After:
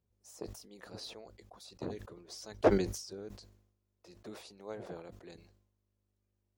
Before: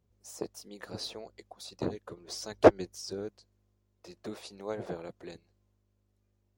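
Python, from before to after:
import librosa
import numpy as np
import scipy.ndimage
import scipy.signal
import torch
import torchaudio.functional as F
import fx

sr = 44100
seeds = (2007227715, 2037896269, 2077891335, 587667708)

y = fx.sustainer(x, sr, db_per_s=74.0)
y = F.gain(torch.from_numpy(y), -7.5).numpy()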